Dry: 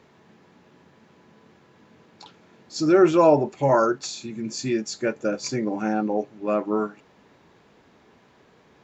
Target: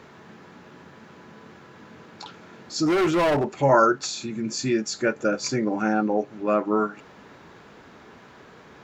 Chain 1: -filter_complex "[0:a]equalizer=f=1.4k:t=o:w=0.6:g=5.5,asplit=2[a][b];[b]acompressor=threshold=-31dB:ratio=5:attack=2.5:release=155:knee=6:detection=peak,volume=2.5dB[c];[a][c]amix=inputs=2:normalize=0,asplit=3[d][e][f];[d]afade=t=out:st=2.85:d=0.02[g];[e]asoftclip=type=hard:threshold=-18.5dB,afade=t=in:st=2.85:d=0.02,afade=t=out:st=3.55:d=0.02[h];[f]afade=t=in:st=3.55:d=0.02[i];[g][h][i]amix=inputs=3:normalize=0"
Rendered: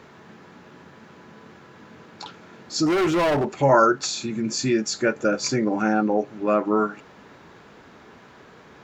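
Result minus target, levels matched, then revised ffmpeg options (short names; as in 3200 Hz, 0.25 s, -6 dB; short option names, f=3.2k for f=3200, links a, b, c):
compressor: peak gain reduction -9 dB
-filter_complex "[0:a]equalizer=f=1.4k:t=o:w=0.6:g=5.5,asplit=2[a][b];[b]acompressor=threshold=-42.5dB:ratio=5:attack=2.5:release=155:knee=6:detection=peak,volume=2.5dB[c];[a][c]amix=inputs=2:normalize=0,asplit=3[d][e][f];[d]afade=t=out:st=2.85:d=0.02[g];[e]asoftclip=type=hard:threshold=-18.5dB,afade=t=in:st=2.85:d=0.02,afade=t=out:st=3.55:d=0.02[h];[f]afade=t=in:st=3.55:d=0.02[i];[g][h][i]amix=inputs=3:normalize=0"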